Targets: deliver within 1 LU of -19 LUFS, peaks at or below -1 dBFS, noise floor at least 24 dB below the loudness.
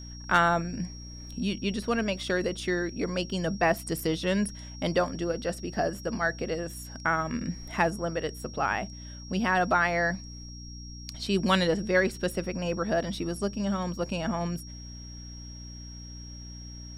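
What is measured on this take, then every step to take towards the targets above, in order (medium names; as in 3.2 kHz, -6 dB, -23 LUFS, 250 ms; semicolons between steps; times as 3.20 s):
hum 60 Hz; highest harmonic 300 Hz; hum level -41 dBFS; steady tone 5.6 kHz; tone level -46 dBFS; loudness -29.0 LUFS; peak level -10.0 dBFS; loudness target -19.0 LUFS
-> hum notches 60/120/180/240/300 Hz; band-stop 5.6 kHz, Q 30; trim +10 dB; peak limiter -1 dBFS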